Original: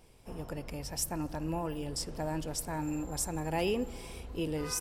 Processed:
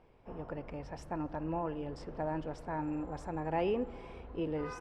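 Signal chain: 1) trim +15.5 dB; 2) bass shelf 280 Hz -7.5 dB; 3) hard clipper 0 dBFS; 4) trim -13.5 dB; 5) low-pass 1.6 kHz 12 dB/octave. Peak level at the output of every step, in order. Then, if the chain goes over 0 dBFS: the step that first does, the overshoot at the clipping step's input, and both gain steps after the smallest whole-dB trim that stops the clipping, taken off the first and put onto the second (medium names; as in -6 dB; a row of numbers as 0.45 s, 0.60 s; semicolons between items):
-6.0 dBFS, -5.5 dBFS, -5.5 dBFS, -19.0 dBFS, -21.5 dBFS; nothing clips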